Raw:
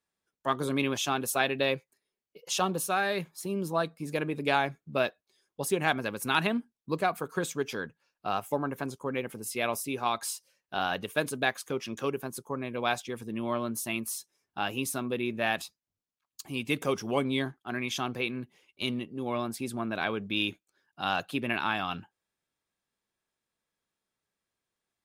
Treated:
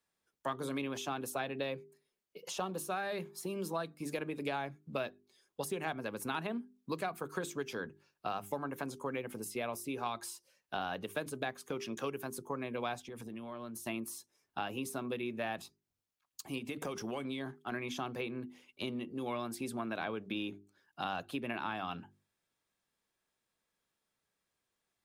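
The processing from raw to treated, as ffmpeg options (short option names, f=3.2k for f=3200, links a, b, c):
-filter_complex "[0:a]asplit=3[a][b][c];[a]afade=t=out:st=13.02:d=0.02[d];[b]acompressor=threshold=-40dB:ratio=16:attack=3.2:release=140:knee=1:detection=peak,afade=t=in:st=13.02:d=0.02,afade=t=out:st=13.85:d=0.02[e];[c]afade=t=in:st=13.85:d=0.02[f];[d][e][f]amix=inputs=3:normalize=0,asettb=1/sr,asplit=3[g][h][i];[g]atrim=end=16.584[j];[h]atrim=start=16.58:end=17.72,asetpts=PTS-STARTPTS,afade=t=in:d=0.004:c=qsin,afade=t=out:st=1.136:d=0.004:c=qsin,acompressor=threshold=-32dB:ratio=5:attack=3.2:release=140:knee=1:detection=peak[k];[i]atrim=start=17.716[l];[j][k]acrossfade=d=0.004:c1=hsin:c2=qsin[m];[m][l]acrossfade=d=0.004:c1=qsin:c2=hsin,bandreject=f=50:t=h:w=6,bandreject=f=100:t=h:w=6,bandreject=f=150:t=h:w=6,bandreject=f=200:t=h:w=6,bandreject=f=250:t=h:w=6,bandreject=f=300:t=h:w=6,bandreject=f=350:t=h:w=6,bandreject=f=400:t=h:w=6,acrossover=split=200|1200[n][o][p];[n]acompressor=threshold=-53dB:ratio=4[q];[o]acompressor=threshold=-39dB:ratio=4[r];[p]acompressor=threshold=-46dB:ratio=4[s];[q][r][s]amix=inputs=3:normalize=0,volume=1.5dB"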